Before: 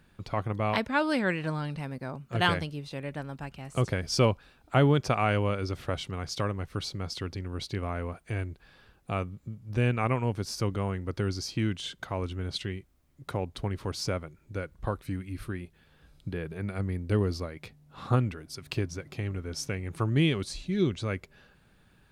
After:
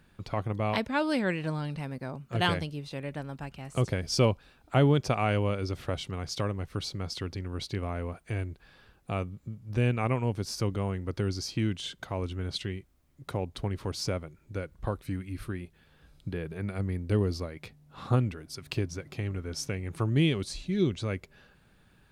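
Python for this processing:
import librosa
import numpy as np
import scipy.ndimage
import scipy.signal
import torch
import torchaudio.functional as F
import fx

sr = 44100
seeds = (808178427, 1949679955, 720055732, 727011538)

y = fx.dynamic_eq(x, sr, hz=1400.0, q=1.1, threshold_db=-43.0, ratio=4.0, max_db=-4)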